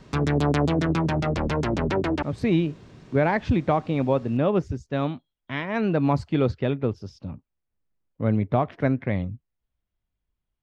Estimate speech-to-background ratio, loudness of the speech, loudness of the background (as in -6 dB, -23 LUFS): -0.5 dB, -25.0 LUFS, -24.5 LUFS